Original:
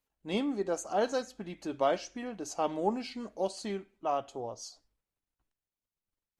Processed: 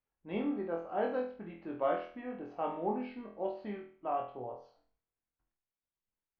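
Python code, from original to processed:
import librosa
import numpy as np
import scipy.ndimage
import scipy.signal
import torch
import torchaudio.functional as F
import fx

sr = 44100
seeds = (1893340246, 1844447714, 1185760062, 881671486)

y = scipy.signal.sosfilt(scipy.signal.cheby2(4, 60, 7800.0, 'lowpass', fs=sr, output='sos'), x)
y = fx.room_flutter(y, sr, wall_m=4.1, rt60_s=0.44)
y = y * 10.0 ** (-6.0 / 20.0)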